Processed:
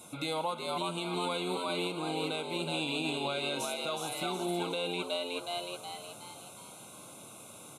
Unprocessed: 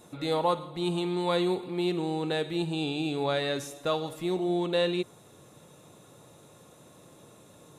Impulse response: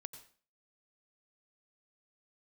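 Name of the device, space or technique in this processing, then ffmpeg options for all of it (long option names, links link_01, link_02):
PA system with an anti-feedback notch: -filter_complex "[0:a]equalizer=frequency=160:width_type=o:width=0.67:gain=-4,equalizer=frequency=400:width_type=o:width=0.67:gain=-8,equalizer=frequency=2500:width_type=o:width=0.67:gain=5,equalizer=frequency=10000:width_type=o:width=0.67:gain=9,asplit=7[link_01][link_02][link_03][link_04][link_05][link_06][link_07];[link_02]adelay=368,afreqshift=89,volume=-4dB[link_08];[link_03]adelay=736,afreqshift=178,volume=-11.1dB[link_09];[link_04]adelay=1104,afreqshift=267,volume=-18.3dB[link_10];[link_05]adelay=1472,afreqshift=356,volume=-25.4dB[link_11];[link_06]adelay=1840,afreqshift=445,volume=-32.5dB[link_12];[link_07]adelay=2208,afreqshift=534,volume=-39.7dB[link_13];[link_01][link_08][link_09][link_10][link_11][link_12][link_13]amix=inputs=7:normalize=0,highpass=110,asuperstop=centerf=1800:order=20:qfactor=4.3,alimiter=level_in=2dB:limit=-24dB:level=0:latency=1:release=361,volume=-2dB,volume=2.5dB"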